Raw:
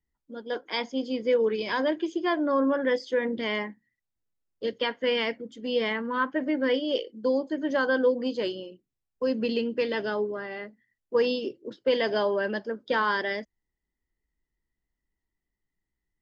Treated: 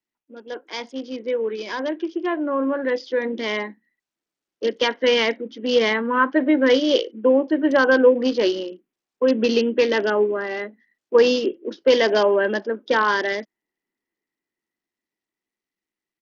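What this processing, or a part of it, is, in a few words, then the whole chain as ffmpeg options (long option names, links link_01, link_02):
Bluetooth headset: -af "highpass=frequency=210:width=0.5412,highpass=frequency=210:width=1.3066,equalizer=frequency=350:width=3.7:gain=3.5,dynaudnorm=framelen=690:gausssize=11:maxgain=11.5dB,aresample=16000,aresample=44100,volume=-1.5dB" -ar 48000 -c:a sbc -b:a 64k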